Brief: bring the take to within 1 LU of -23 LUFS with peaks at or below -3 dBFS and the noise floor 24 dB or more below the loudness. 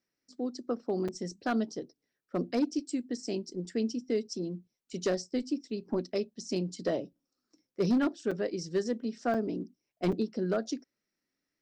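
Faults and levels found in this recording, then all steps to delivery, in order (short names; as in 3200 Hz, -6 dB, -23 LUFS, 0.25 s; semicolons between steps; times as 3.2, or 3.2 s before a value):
clipped 0.6%; flat tops at -21.5 dBFS; dropouts 4; longest dropout 5.2 ms; loudness -33.5 LUFS; peak -21.5 dBFS; loudness target -23.0 LUFS
-> clip repair -21.5 dBFS; interpolate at 1.08/8.31/9.34/10.12, 5.2 ms; gain +10.5 dB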